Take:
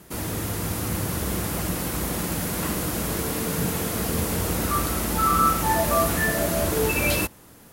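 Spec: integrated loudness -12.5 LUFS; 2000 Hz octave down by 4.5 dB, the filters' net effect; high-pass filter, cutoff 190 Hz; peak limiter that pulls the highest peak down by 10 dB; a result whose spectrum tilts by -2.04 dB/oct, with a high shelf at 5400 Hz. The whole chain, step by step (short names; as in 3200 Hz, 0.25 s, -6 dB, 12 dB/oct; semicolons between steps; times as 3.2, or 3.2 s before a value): HPF 190 Hz; bell 2000 Hz -7 dB; high shelf 5400 Hz +7.5 dB; gain +12.5 dB; limiter -4.5 dBFS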